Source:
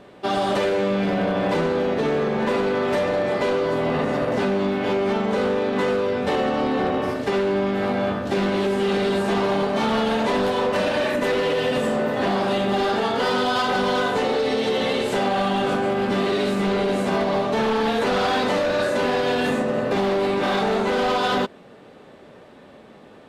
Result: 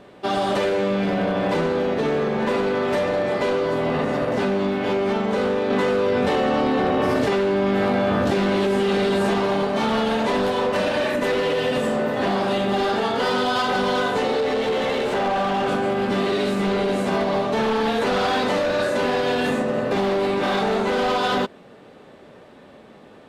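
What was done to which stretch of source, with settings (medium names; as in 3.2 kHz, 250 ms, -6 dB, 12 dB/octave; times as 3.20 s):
5.70–9.34 s: level flattener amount 100%
14.40–15.68 s: overdrive pedal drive 18 dB, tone 1.4 kHz, clips at -16 dBFS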